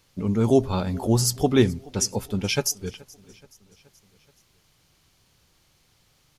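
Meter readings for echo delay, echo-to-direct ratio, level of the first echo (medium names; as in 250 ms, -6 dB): 426 ms, -22.0 dB, -23.5 dB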